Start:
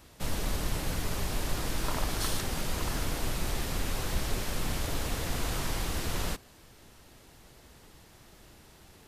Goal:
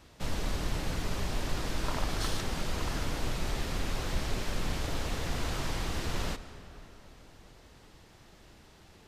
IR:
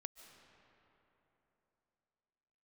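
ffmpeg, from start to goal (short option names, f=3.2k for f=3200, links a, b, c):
-filter_complex "[0:a]asplit=2[a][b];[1:a]atrim=start_sample=2205,lowpass=7.8k[c];[b][c]afir=irnorm=-1:irlink=0,volume=8.5dB[d];[a][d]amix=inputs=2:normalize=0,volume=-8.5dB"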